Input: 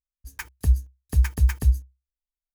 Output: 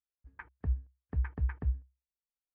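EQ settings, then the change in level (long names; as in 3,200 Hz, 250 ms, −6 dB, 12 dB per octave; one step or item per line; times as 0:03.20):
high-pass filter 91 Hz 6 dB per octave
low-pass filter 1,800 Hz 24 dB per octave
high-frequency loss of the air 55 metres
−7.5 dB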